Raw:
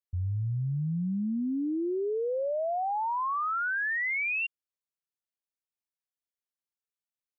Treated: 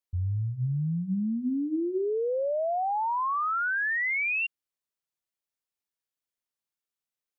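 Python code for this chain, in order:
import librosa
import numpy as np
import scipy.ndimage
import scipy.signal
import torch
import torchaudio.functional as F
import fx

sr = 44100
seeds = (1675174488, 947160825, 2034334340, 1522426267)

y = fx.hum_notches(x, sr, base_hz=60, count=6)
y = y * librosa.db_to_amplitude(2.0)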